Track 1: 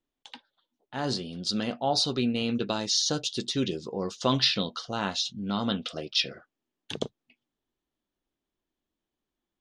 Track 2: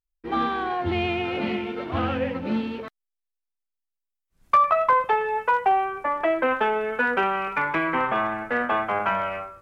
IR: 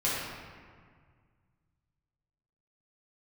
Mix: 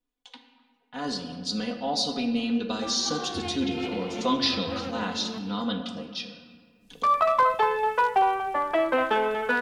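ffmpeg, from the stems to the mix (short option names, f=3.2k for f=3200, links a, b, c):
-filter_complex "[0:a]aecho=1:1:4.1:0.85,volume=-6dB,afade=t=out:st=5.73:d=0.58:silence=0.298538,asplit=3[a][b][c];[b]volume=-13dB[d];[1:a]highshelf=f=3.1k:t=q:w=1.5:g=7.5,adelay=2500,volume=-1dB,asplit=2[e][f];[f]volume=-11dB[g];[c]apad=whole_len=534383[h];[e][h]sidechaincompress=threshold=-48dB:ratio=4:attack=47:release=131[i];[2:a]atrim=start_sample=2205[j];[d][j]afir=irnorm=-1:irlink=0[k];[g]aecho=0:1:238:1[l];[a][i][k][l]amix=inputs=4:normalize=0"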